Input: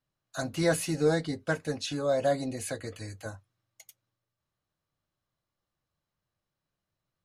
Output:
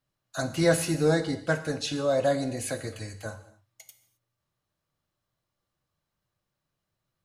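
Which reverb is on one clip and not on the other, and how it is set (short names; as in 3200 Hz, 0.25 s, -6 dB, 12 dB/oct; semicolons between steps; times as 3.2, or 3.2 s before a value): non-linear reverb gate 0.29 s falling, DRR 9 dB; gain +2.5 dB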